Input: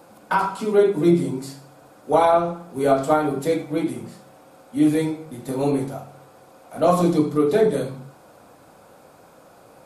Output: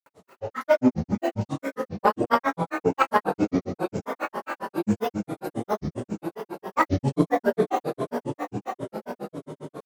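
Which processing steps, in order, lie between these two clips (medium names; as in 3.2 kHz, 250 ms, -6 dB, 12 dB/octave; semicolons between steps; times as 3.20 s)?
on a send: echo that smears into a reverb 1178 ms, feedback 56%, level -8 dB; on the sum: Schroeder reverb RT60 3.8 s, combs from 31 ms, DRR 4 dB; Chebyshev shaper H 3 -21 dB, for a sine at -3 dBFS; granulator, grains 7.4 per s, pitch spread up and down by 12 st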